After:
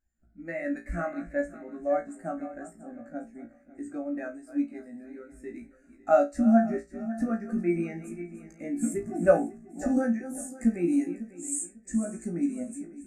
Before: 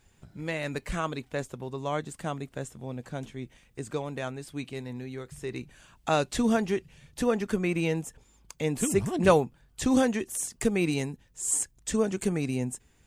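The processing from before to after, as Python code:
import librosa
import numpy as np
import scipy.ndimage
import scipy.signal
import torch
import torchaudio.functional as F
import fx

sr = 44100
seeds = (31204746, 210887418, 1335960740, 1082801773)

p1 = fx.reverse_delay_fb(x, sr, ms=274, feedback_pct=64, wet_db=-9.5)
p2 = fx.rider(p1, sr, range_db=4, speed_s=0.5)
p3 = p1 + F.gain(torch.from_numpy(p2), 2.0).numpy()
p4 = fx.fixed_phaser(p3, sr, hz=660.0, stages=8)
p5 = p4 + fx.room_flutter(p4, sr, wall_m=3.0, rt60_s=0.28, dry=0)
p6 = fx.spectral_expand(p5, sr, expansion=1.5)
y = F.gain(torch.from_numpy(p6), -4.0).numpy()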